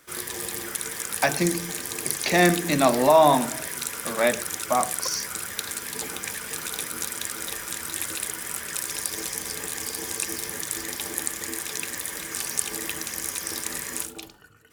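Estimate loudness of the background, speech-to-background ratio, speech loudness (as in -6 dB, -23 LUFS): -29.0 LUFS, 6.5 dB, -22.5 LUFS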